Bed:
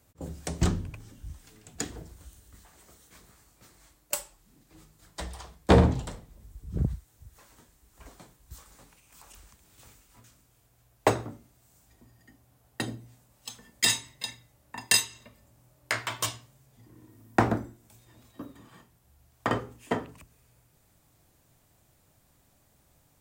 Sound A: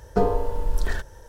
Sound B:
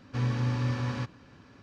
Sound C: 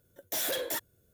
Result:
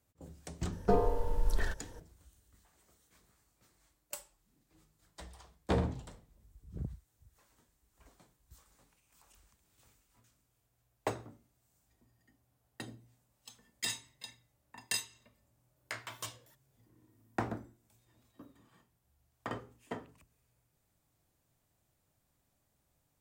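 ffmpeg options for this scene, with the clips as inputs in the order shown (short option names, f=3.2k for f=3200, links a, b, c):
-filter_complex "[0:a]volume=-12.5dB[a];[3:a]acompressor=threshold=-53dB:ratio=6:attack=3.2:release=140:knee=1:detection=peak[b];[1:a]atrim=end=1.28,asetpts=PTS-STARTPTS,volume=-6.5dB,afade=t=in:d=0.004:c=hsin,afade=t=out:st=1.276:d=0.004:c=hsin,adelay=720[c];[b]atrim=end=1.13,asetpts=PTS-STARTPTS,volume=-12dB,afade=t=in:d=0.004:c=hsin,afade=t=out:st=1.126:d=0.004:c=hsin,adelay=15760[d];[a][c][d]amix=inputs=3:normalize=0"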